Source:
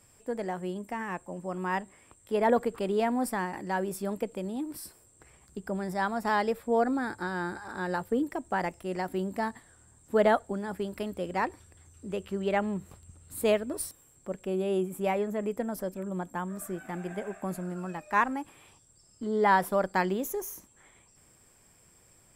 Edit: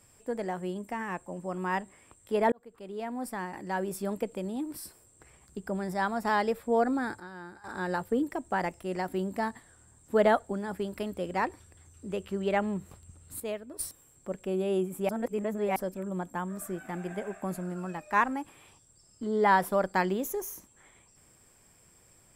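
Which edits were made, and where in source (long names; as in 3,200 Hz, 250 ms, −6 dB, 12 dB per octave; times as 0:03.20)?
0:02.52–0:04.00: fade in
0:07.20–0:07.64: clip gain −11.5 dB
0:13.40–0:13.79: clip gain −10.5 dB
0:15.09–0:15.76: reverse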